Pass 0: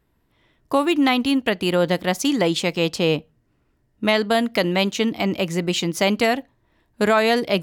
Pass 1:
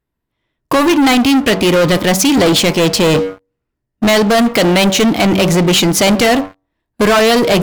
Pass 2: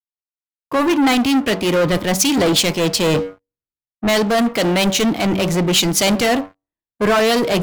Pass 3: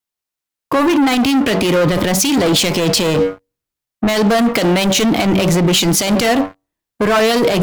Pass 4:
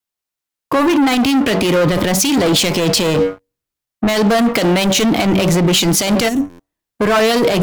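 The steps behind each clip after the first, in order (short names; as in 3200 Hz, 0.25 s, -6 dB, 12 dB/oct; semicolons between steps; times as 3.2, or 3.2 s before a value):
de-hum 95.28 Hz, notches 14; sample leveller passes 5
three-band expander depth 100%; gain -5 dB
in parallel at -1 dB: negative-ratio compressor -21 dBFS, ratio -0.5; on the sum: limiter -7 dBFS, peak gain reduction 7.5 dB; gain +2 dB
spectral gain 6.29–6.53, 450–5500 Hz -15 dB; stuck buffer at 6.49, samples 512, times 8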